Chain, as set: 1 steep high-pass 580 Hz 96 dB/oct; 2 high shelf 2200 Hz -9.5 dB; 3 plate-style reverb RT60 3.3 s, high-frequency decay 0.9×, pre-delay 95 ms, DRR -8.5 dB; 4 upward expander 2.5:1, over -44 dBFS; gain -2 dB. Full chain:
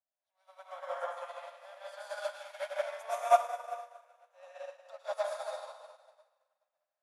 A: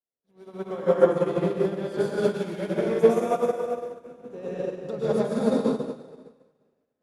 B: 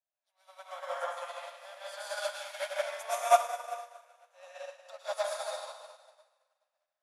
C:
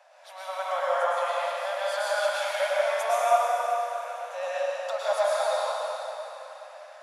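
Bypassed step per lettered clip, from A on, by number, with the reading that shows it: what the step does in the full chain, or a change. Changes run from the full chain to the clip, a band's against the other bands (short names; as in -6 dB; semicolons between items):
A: 1, 500 Hz band +8.5 dB; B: 2, 8 kHz band +6.5 dB; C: 4, 1 kHz band -5.0 dB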